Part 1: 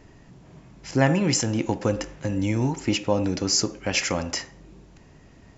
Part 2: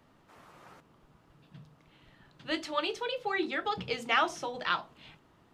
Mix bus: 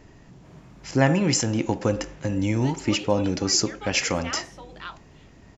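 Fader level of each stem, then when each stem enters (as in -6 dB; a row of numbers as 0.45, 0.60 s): +0.5, -8.0 dB; 0.00, 0.15 s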